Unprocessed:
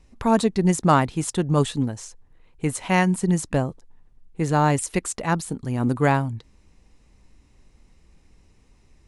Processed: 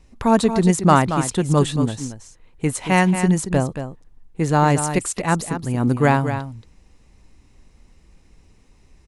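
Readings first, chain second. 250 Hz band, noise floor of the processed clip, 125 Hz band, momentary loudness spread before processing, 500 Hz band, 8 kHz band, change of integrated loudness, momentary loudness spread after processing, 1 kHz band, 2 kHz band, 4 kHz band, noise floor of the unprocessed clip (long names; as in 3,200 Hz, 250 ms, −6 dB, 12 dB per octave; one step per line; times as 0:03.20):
+3.5 dB, −53 dBFS, +3.5 dB, 10 LU, +3.5 dB, +3.5 dB, +3.5 dB, 11 LU, +3.5 dB, +3.5 dB, +3.5 dB, −58 dBFS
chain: single-tap delay 228 ms −9.5 dB
level +3 dB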